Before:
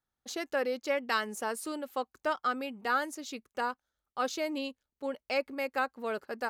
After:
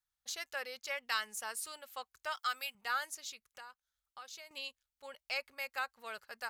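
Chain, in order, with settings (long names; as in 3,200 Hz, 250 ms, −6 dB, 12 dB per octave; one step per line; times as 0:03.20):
0:02.33–0:02.75: spectral tilt +3 dB per octave
0:03.28–0:04.51: downward compressor 6 to 1, threshold −41 dBFS, peak gain reduction 13.5 dB
guitar amp tone stack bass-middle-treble 10-0-10
level +1.5 dB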